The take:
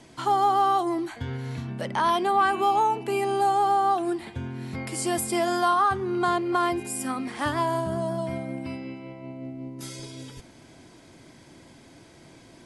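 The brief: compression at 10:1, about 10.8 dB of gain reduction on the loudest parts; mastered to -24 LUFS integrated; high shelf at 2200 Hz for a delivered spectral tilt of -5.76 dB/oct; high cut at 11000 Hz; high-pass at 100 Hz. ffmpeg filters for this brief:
-af "highpass=100,lowpass=11k,highshelf=f=2.2k:g=-7,acompressor=threshold=-30dB:ratio=10,volume=11dB"

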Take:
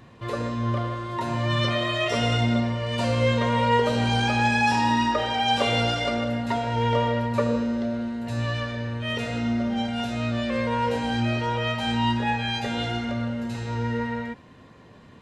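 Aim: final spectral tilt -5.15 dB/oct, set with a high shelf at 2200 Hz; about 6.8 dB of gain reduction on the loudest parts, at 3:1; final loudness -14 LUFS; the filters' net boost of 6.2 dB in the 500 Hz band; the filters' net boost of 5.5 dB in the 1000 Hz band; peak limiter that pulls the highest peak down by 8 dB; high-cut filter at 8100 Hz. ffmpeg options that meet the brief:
-af "lowpass=8.1k,equalizer=f=500:t=o:g=6,equalizer=f=1k:t=o:g=5.5,highshelf=f=2.2k:g=-5.5,acompressor=threshold=-21dB:ratio=3,volume=12.5dB,alimiter=limit=-5.5dB:level=0:latency=1"

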